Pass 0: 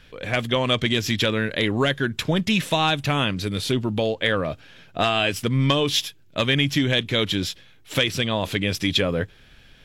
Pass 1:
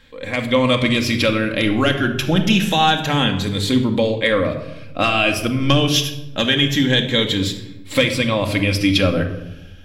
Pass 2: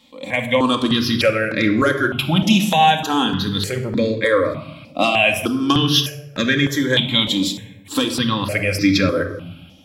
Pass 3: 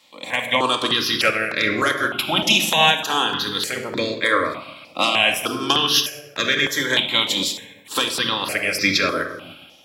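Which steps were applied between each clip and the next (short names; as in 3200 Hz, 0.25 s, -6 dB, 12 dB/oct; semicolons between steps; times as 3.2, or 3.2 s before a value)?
moving spectral ripple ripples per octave 1, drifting +0.27 Hz, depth 7 dB; AGC gain up to 4 dB; reverb RT60 0.90 s, pre-delay 4 ms, DRR 3.5 dB; gain -1 dB
HPF 130 Hz 12 dB/oct; step phaser 3.3 Hz 430–3000 Hz; gain +3.5 dB
spectral limiter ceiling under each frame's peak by 14 dB; HPF 420 Hz 6 dB/oct; gain -1 dB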